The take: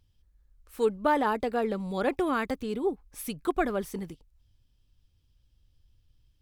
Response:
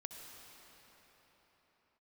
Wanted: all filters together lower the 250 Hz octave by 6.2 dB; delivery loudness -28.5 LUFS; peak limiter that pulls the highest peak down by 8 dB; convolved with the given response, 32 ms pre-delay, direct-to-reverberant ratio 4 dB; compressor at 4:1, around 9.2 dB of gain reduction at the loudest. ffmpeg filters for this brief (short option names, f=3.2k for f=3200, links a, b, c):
-filter_complex "[0:a]equalizer=f=250:t=o:g=-8.5,acompressor=threshold=-33dB:ratio=4,alimiter=level_in=6dB:limit=-24dB:level=0:latency=1,volume=-6dB,asplit=2[a][b];[1:a]atrim=start_sample=2205,adelay=32[c];[b][c]afir=irnorm=-1:irlink=0,volume=-1dB[d];[a][d]amix=inputs=2:normalize=0,volume=10.5dB"